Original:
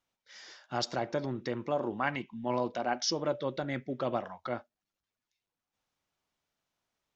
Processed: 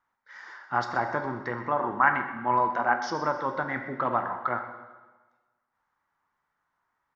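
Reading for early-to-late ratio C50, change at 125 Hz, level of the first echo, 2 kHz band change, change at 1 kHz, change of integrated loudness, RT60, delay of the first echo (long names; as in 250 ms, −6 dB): 7.5 dB, +0.5 dB, −14.5 dB, +11.5 dB, +11.0 dB, +6.5 dB, 1.3 s, 126 ms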